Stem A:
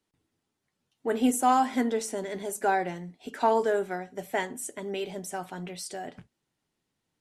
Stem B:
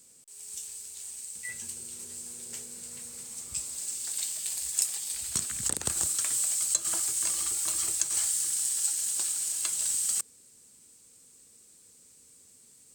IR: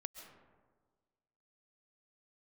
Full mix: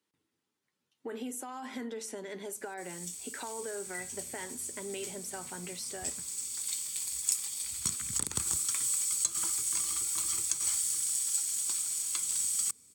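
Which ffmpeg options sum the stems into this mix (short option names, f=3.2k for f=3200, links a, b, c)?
-filter_complex "[0:a]highpass=f=260:p=1,alimiter=limit=-23.5dB:level=0:latency=1:release=22,acompressor=threshold=-34dB:ratio=6,volume=-1.5dB[a];[1:a]aecho=1:1:0.9:0.37,adelay=2500,volume=-3dB[b];[a][b]amix=inputs=2:normalize=0,highpass=48,equalizer=f=690:w=3.6:g=-7.5"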